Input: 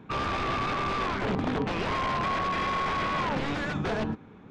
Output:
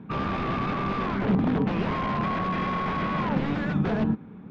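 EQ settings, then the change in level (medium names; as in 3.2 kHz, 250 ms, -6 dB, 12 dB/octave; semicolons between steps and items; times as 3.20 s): low-pass 3.1 kHz 6 dB/octave; distance through air 64 m; peaking EQ 190 Hz +10 dB 1 oct; 0.0 dB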